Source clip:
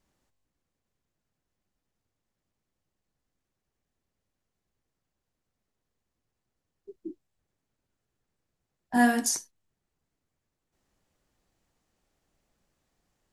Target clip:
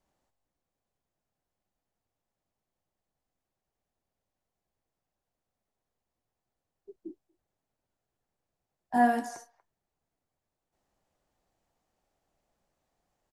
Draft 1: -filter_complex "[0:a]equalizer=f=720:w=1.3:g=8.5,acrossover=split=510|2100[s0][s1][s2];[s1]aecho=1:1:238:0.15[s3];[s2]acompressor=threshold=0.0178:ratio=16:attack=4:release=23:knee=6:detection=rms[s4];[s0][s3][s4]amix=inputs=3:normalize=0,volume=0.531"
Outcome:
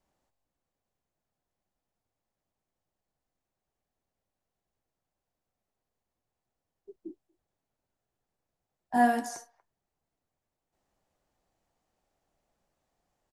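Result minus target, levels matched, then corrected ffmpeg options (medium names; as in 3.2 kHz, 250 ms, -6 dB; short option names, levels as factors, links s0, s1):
compression: peak gain reduction -6 dB
-filter_complex "[0:a]equalizer=f=720:w=1.3:g=8.5,acrossover=split=510|2100[s0][s1][s2];[s1]aecho=1:1:238:0.15[s3];[s2]acompressor=threshold=0.00841:ratio=16:attack=4:release=23:knee=6:detection=rms[s4];[s0][s3][s4]amix=inputs=3:normalize=0,volume=0.531"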